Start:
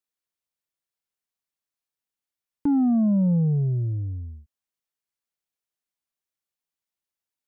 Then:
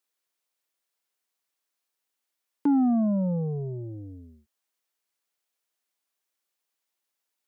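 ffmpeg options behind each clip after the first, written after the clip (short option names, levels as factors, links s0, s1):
-filter_complex "[0:a]asplit=2[s0][s1];[s1]alimiter=level_in=1.58:limit=0.0631:level=0:latency=1,volume=0.631,volume=0.944[s2];[s0][s2]amix=inputs=2:normalize=0,highpass=300,volume=1.12"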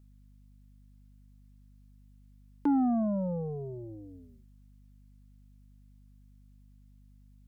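-af "equalizer=f=93:w=0.46:g=-10,aeval=exprs='val(0)+0.00158*(sin(2*PI*50*n/s)+sin(2*PI*2*50*n/s)/2+sin(2*PI*3*50*n/s)/3+sin(2*PI*4*50*n/s)/4+sin(2*PI*5*50*n/s)/5)':c=same"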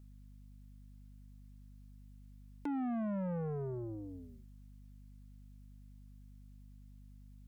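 -af "acompressor=threshold=0.0224:ratio=8,asoftclip=type=tanh:threshold=0.0168,volume=1.26"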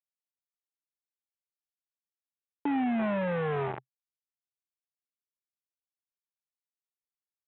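-af "aresample=8000,acrusher=bits=5:mix=0:aa=0.000001,aresample=44100,highpass=110,equalizer=f=130:t=q:w=4:g=7,equalizer=f=400:t=q:w=4:g=5,equalizer=f=810:t=q:w=4:g=9,lowpass=f=2400:w=0.5412,lowpass=f=2400:w=1.3066,volume=1.33"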